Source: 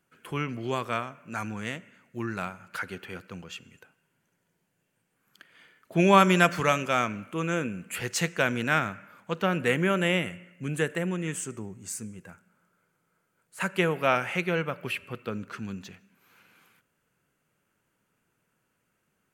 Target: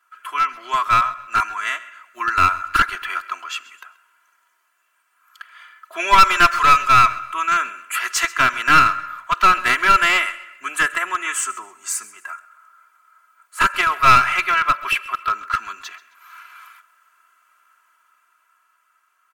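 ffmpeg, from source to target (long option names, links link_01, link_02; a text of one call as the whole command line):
ffmpeg -i in.wav -filter_complex "[0:a]aecho=1:1:3:0.94,dynaudnorm=framelen=280:gausssize=13:maxgain=6dB,asplit=2[link_01][link_02];[link_02]alimiter=limit=-11.5dB:level=0:latency=1:release=373,volume=-1dB[link_03];[link_01][link_03]amix=inputs=2:normalize=0,highpass=frequency=1200:width_type=q:width=5.2,aeval=exprs='clip(val(0),-1,0.251)':channel_layout=same,asplit=2[link_04][link_05];[link_05]aecho=0:1:132|264|396:0.1|0.032|0.0102[link_06];[link_04][link_06]amix=inputs=2:normalize=0,volume=-2dB" out.wav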